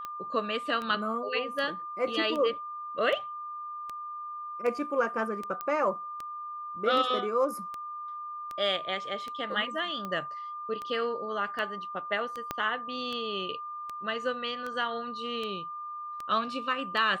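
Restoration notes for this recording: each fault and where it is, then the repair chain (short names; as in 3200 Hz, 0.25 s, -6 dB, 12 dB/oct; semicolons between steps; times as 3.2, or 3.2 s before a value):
tick 78 rpm -23 dBFS
tone 1200 Hz -36 dBFS
5.61 pop -20 dBFS
12.51 pop -16 dBFS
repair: de-click; notch 1200 Hz, Q 30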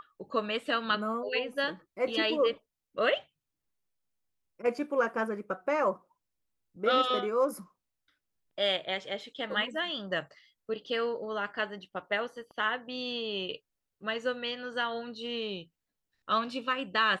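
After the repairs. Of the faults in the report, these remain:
12.51 pop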